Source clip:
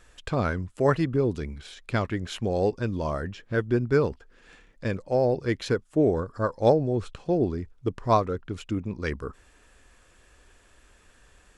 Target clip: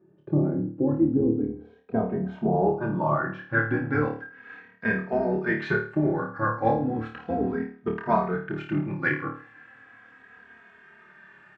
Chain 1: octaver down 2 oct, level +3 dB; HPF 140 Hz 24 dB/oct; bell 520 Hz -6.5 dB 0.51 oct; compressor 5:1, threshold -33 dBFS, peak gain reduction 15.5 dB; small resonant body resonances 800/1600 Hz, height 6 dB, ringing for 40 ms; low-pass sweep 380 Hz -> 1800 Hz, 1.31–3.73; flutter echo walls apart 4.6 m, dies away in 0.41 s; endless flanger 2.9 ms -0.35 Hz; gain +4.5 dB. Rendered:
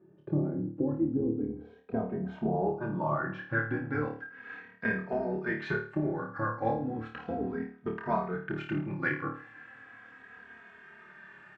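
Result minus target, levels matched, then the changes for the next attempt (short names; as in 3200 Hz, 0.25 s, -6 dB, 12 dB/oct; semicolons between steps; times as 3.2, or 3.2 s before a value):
compressor: peak gain reduction +7 dB
change: compressor 5:1, threshold -24 dBFS, peak gain reduction 8.5 dB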